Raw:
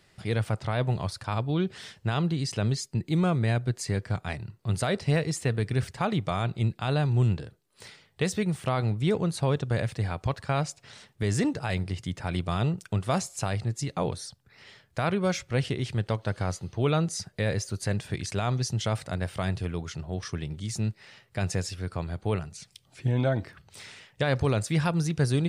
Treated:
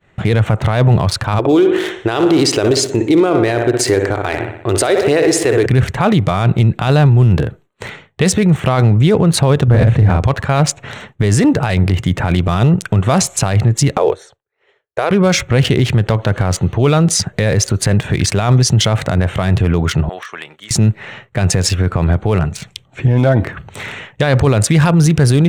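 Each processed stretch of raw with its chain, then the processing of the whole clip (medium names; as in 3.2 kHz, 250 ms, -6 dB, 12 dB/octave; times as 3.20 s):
1.39–5.66 s: resonant low shelf 250 Hz -10.5 dB, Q 3 + feedback delay 61 ms, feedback 56%, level -10.5 dB
9.68–10.23 s: tilt EQ -2 dB/octave + doubling 38 ms -2.5 dB
13.97–15.11 s: resonant low shelf 290 Hz -12.5 dB, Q 3 + upward expansion, over -45 dBFS
20.09–20.71 s: high-pass 970 Hz + compression 8:1, threshold -43 dBFS
whole clip: local Wiener filter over 9 samples; expander -54 dBFS; loudness maximiser +26 dB; trim -3 dB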